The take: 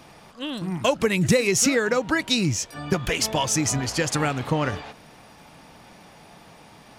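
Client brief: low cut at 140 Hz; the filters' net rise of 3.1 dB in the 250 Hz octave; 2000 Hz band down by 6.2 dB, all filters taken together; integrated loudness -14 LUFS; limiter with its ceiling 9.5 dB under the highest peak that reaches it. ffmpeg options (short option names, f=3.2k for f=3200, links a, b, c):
-af "highpass=140,equalizer=f=250:t=o:g=5,equalizer=f=2k:t=o:g=-8,volume=12.5dB,alimiter=limit=-4dB:level=0:latency=1"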